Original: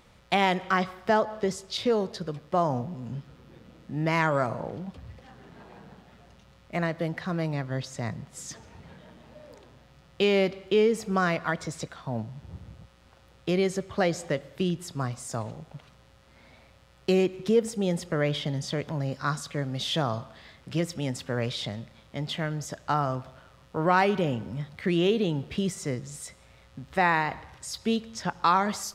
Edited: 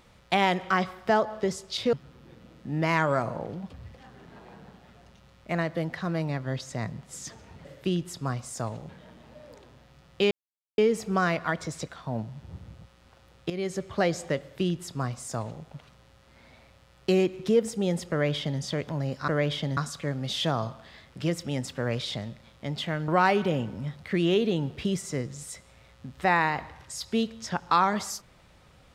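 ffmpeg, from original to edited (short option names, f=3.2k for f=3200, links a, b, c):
-filter_complex "[0:a]asplit=10[a][b][c][d][e][f][g][h][i][j];[a]atrim=end=1.932[k];[b]atrim=start=3.168:end=8.892[l];[c]atrim=start=14.388:end=15.632[m];[d]atrim=start=8.888:end=10.31,asetpts=PTS-STARTPTS,afade=t=out:st=1.418:d=0.004:c=hsin[n];[e]atrim=start=10.31:end=10.78,asetpts=PTS-STARTPTS,volume=0[o];[f]atrim=start=10.78:end=13.5,asetpts=PTS-STARTPTS,afade=t=in:d=0.004:c=hsin,afade=t=out:st=2.716:d=0.004:c=hsin:silence=0.237137[p];[g]atrim=start=13.5:end=19.282,asetpts=PTS-STARTPTS,afade=t=in:d=0.36:silence=0.237137[q];[h]atrim=start=18.108:end=18.602[r];[i]atrim=start=19.278:end=22.592[s];[j]atrim=start=23.808[t];[k][l]acrossfade=d=0.004:c1=hsin:c2=hsin[u];[u][m]acrossfade=d=0.004:c1=hsin:c2=hsin[v];[n][o][p][q]concat=n=4:v=0:a=1[w];[v][w]acrossfade=d=0.004:c1=hsin:c2=hsin[x];[x][r]acrossfade=d=0.004:c1=hsin:c2=hsin[y];[y][s]acrossfade=d=0.004:c1=hsin:c2=hsin[z];[z][t]acrossfade=d=0.004:c1=hsin:c2=hsin"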